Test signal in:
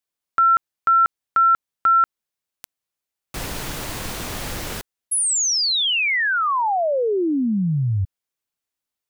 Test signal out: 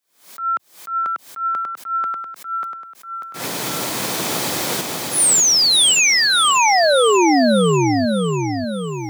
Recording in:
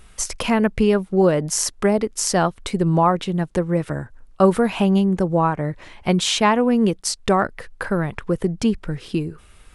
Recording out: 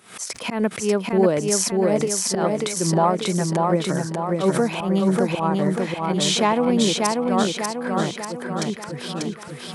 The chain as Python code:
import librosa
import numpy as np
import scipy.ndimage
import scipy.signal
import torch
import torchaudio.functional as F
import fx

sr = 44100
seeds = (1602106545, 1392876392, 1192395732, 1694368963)

p1 = fx.recorder_agc(x, sr, target_db=-10.0, rise_db_per_s=21.0, max_gain_db=30)
p2 = scipy.signal.sosfilt(scipy.signal.bessel(6, 200.0, 'highpass', norm='mag', fs=sr, output='sos'), p1)
p3 = fx.auto_swell(p2, sr, attack_ms=108.0)
p4 = fx.dynamic_eq(p3, sr, hz=1600.0, q=1.4, threshold_db=-31.0, ratio=4.0, max_db=-6)
p5 = fx.notch(p4, sr, hz=2800.0, q=15.0)
p6 = p5 + fx.echo_feedback(p5, sr, ms=591, feedback_pct=53, wet_db=-3.0, dry=0)
p7 = fx.pre_swell(p6, sr, db_per_s=130.0)
y = p7 * 10.0 ** (-1.0 / 20.0)